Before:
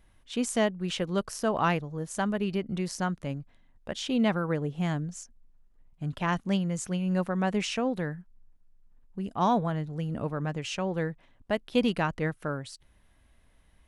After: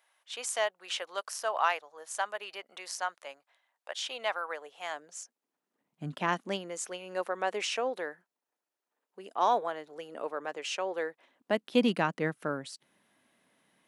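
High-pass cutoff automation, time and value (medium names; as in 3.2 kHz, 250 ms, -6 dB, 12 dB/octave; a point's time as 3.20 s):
high-pass 24 dB/octave
4.81 s 640 Hz
6.06 s 170 Hz
6.83 s 400 Hz
11.09 s 400 Hz
11.62 s 180 Hz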